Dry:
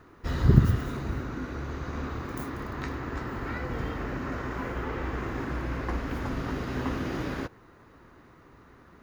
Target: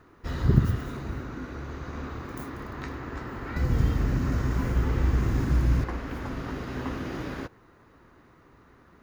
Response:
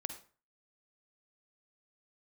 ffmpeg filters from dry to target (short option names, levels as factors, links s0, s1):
-filter_complex "[0:a]asettb=1/sr,asplit=3[s0][s1][s2];[s0]atrim=end=3.564[s3];[s1]atrim=start=3.56:end=5.84,asetpts=PTS-STARTPTS,afade=t=in:d=0.004:c=qsin,afade=t=out:st=2.276:d=0.004:c=qsin,bass=f=250:g=14,treble=f=4000:g=12[s4];[s2]atrim=start=5.836[s5];[s3][s4]acrossfade=d=0.004:c1=hsin:c2=qsin[s6];[s6][s5]acrossfade=d=0.004:c1=qsin:c2=hsin,volume=0.794"